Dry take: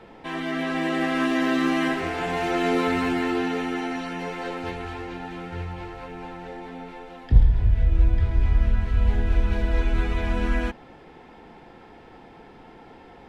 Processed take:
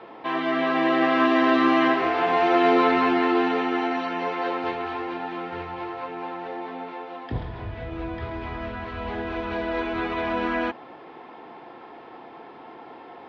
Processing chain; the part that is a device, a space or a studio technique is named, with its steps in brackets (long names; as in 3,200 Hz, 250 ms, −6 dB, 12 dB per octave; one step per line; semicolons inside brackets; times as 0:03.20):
kitchen radio (loudspeaker in its box 190–4,500 Hz, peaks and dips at 190 Hz −7 dB, 340 Hz +3 dB, 680 Hz +5 dB, 1,100 Hz +9 dB)
level +2 dB